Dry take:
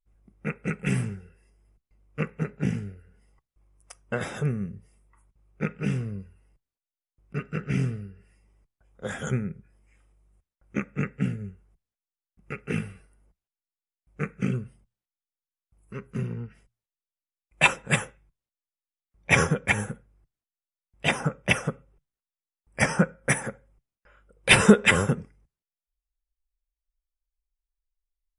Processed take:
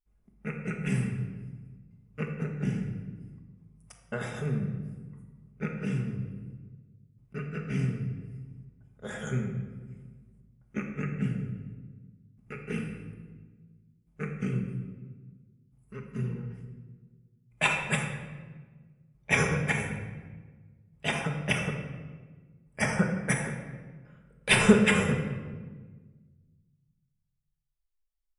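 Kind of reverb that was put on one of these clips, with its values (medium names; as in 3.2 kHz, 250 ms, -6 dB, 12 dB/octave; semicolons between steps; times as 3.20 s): simulated room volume 1200 m³, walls mixed, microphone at 1.4 m; trim -6.5 dB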